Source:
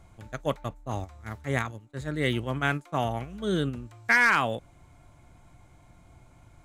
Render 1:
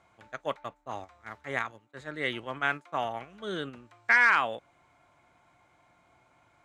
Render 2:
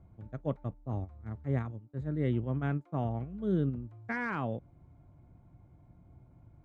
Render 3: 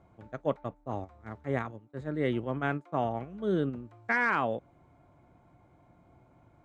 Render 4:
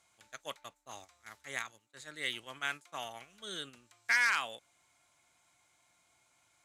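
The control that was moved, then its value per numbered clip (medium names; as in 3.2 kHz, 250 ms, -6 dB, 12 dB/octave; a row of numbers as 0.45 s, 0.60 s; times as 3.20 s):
band-pass filter, frequency: 1.5 kHz, 140 Hz, 410 Hz, 6.6 kHz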